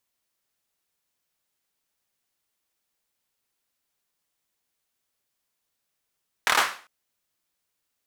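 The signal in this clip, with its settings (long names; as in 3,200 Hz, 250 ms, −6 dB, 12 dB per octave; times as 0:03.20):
synth clap length 0.40 s, bursts 5, apart 26 ms, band 1,300 Hz, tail 0.40 s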